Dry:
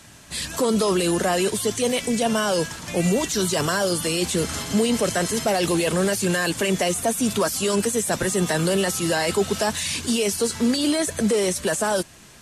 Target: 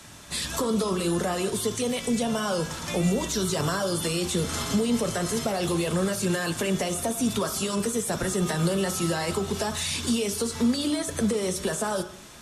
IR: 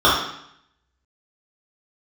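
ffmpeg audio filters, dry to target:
-filter_complex "[0:a]acrossover=split=190[a][b];[b]acompressor=threshold=-27dB:ratio=5[c];[a][c]amix=inputs=2:normalize=0,asplit=2[d][e];[1:a]atrim=start_sample=2205,highshelf=f=3.4k:g=7[f];[e][f]afir=irnorm=-1:irlink=0,volume=-31.5dB[g];[d][g]amix=inputs=2:normalize=0"

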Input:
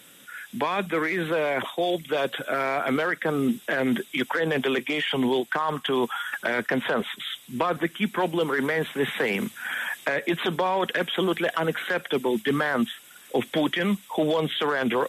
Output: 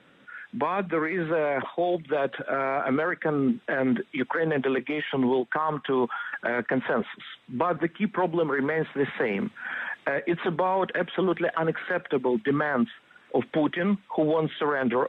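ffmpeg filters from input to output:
-af "lowpass=1.8k"

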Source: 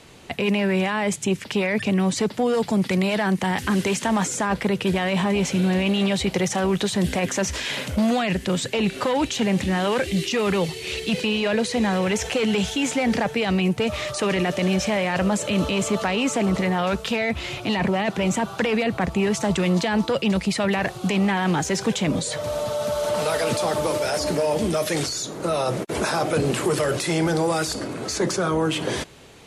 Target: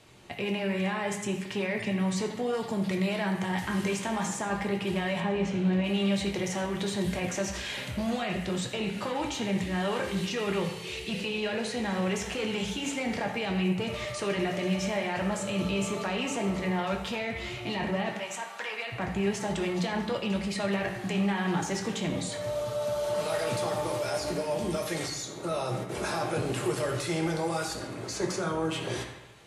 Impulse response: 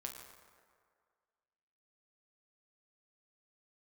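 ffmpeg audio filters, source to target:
-filter_complex "[0:a]asettb=1/sr,asplit=3[a][b][c];[a]atrim=end=5.204[d];[b]atrim=start=5.2:end=5.84,asetpts=PTS-STARTPTS,afade=t=in:d=0.004:c=qsin,afade=t=out:st=0.636:d=0.004:c=qsin,aemphasis=mode=reproduction:type=75fm[e];[c]atrim=start=5.836[f];[d][e]acrossfade=d=0.004:c1=hsin:c2=qsin[g];[g][f]acrossfade=d=0.004:c1=qsin:c2=hsin,asettb=1/sr,asplit=3[h][i][j];[h]atrim=end=18.154[k];[i]atrim=start=18.15:end=18.92,asetpts=PTS-STARTPTS,afade=t=in:d=0.004:c=qsin,afade=t=out:st=0.766:d=0.004:c=qsin,highpass=780[l];[j]atrim=start=18.916[m];[k][l]acrossfade=d=0.004:c1=hsin:c2=qsin[n];[n][m]acrossfade=d=0.004:c1=qsin:c2=hsin[o];[1:a]atrim=start_sample=2205,asetrate=79380,aresample=44100[p];[o][p]afir=irnorm=-1:irlink=0"

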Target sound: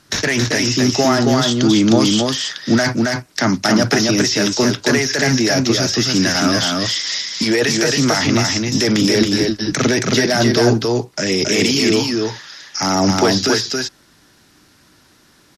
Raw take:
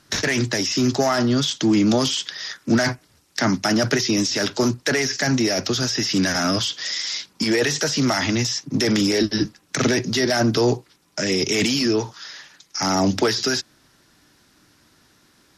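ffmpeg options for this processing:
-af "aecho=1:1:273:0.708,volume=3.5dB"

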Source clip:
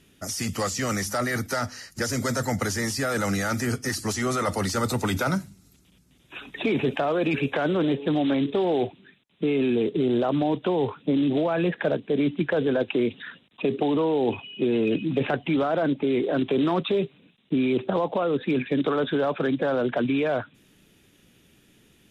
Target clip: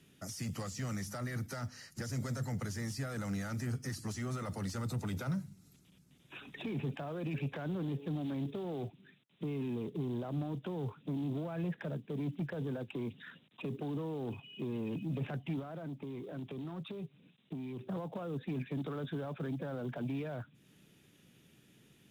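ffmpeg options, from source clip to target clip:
-filter_complex "[0:a]acrossover=split=200[a][b];[b]acompressor=threshold=-42dB:ratio=2[c];[a][c]amix=inputs=2:normalize=0,acrusher=bits=8:mode=log:mix=0:aa=0.000001,asoftclip=type=tanh:threshold=-26dB,lowshelf=f=66:g=-11,asettb=1/sr,asplit=3[d][e][f];[d]atrim=end=15.594[g];[e]atrim=start=15.59:end=17.81,asetpts=PTS-STARTPTS,afade=t=in:d=0.004:c=qsin,afade=t=out:st=2.216:d=0.004:c=qsin,acompressor=threshold=-37dB:ratio=3[h];[f]atrim=start=17.806[i];[g][h]acrossfade=d=0.004:c1=hsin:c2=qsin[j];[j][i]acrossfade=d=0.004:c1=qsin:c2=hsin,equalizer=f=140:w=1.5:g=7.5,volume=-6.5dB"

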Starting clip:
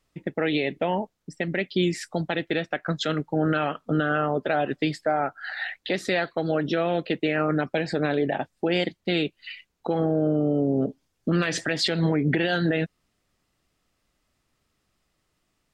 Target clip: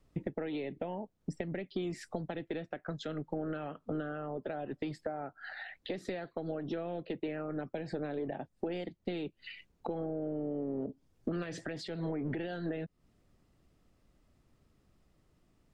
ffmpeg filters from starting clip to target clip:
-filter_complex "[0:a]acrossover=split=340|1800[a][b][c];[a]asoftclip=type=tanh:threshold=-33.5dB[d];[d][b][c]amix=inputs=3:normalize=0,acompressor=threshold=-38dB:ratio=10,tiltshelf=f=770:g=7,volume=1dB"

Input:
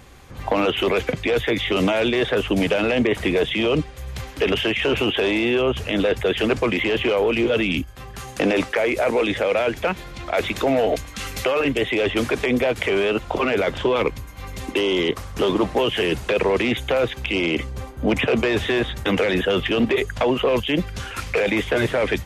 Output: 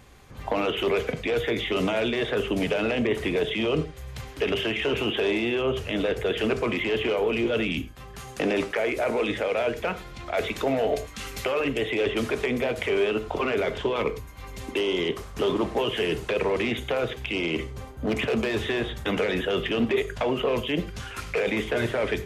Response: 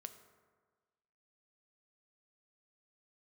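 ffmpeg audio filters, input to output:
-filter_complex "[0:a]asettb=1/sr,asplit=3[a][b][c];[a]atrim=end=17.554[d];[b]atrim=start=17.55:end=18.61,asetpts=PTS-STARTPTS,afade=t=in:d=0.004:c=qsin,afade=t=out:st=1.056:d=0.004:c=qsin,asoftclip=type=hard:threshold=-16dB[e];[c]atrim=start=18.606[f];[d][e]acrossfade=d=0.004:c1=hsin:c2=qsin[g];[g][f]acrossfade=d=0.004:c1=qsin:c2=hsin[h];[1:a]atrim=start_sample=2205,afade=t=out:st=0.16:d=0.01,atrim=end_sample=7497[i];[h][i]afir=irnorm=-1:irlink=0"

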